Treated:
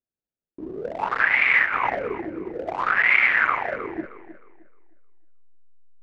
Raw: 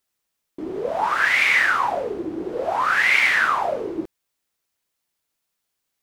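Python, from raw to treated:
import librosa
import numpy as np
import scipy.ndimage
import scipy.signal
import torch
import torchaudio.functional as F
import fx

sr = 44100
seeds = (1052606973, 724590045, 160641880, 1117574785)

p1 = fx.wiener(x, sr, points=41)
p2 = fx.backlash(p1, sr, play_db=-27.5)
p3 = p1 + (p2 * 10.0 ** (-4.0 / 20.0))
p4 = fx.dynamic_eq(p3, sr, hz=2200.0, q=0.88, threshold_db=-26.0, ratio=4.0, max_db=6)
p5 = fx.env_lowpass_down(p4, sr, base_hz=2100.0, full_db=-11.0)
p6 = fx.over_compress(p5, sr, threshold_db=-20.0, ratio=-1.0, at=(1.64, 2.14), fade=0.02)
p7 = p6 + fx.echo_tape(p6, sr, ms=310, feedback_pct=29, wet_db=-13.0, lp_hz=4200.0, drive_db=-3.0, wow_cents=19, dry=0)
y = p7 * 10.0 ** (-5.5 / 20.0)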